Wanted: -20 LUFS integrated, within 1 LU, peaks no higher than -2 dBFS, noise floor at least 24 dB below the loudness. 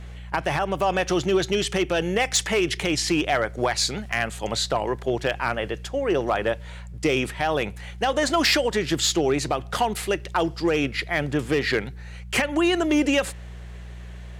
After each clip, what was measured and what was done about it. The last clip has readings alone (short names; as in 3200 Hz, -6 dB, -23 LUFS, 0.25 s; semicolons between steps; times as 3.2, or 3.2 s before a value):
clipped 0.3%; flat tops at -13.5 dBFS; hum 60 Hz; harmonics up to 180 Hz; hum level -36 dBFS; loudness -24.0 LUFS; peak -13.5 dBFS; loudness target -20.0 LUFS
-> clip repair -13.5 dBFS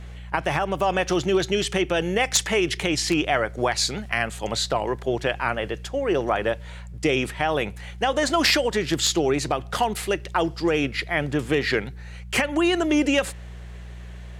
clipped 0.0%; hum 60 Hz; harmonics up to 180 Hz; hum level -36 dBFS
-> de-hum 60 Hz, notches 3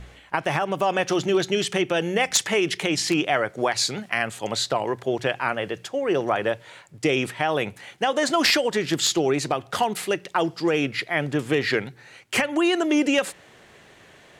hum none; loudness -23.5 LUFS; peak -4.5 dBFS; loudness target -20.0 LUFS
-> gain +3.5 dB; limiter -2 dBFS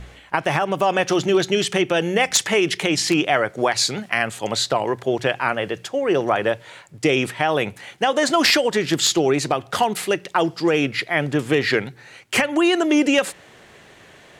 loudness -20.0 LUFS; peak -2.0 dBFS; noise floor -48 dBFS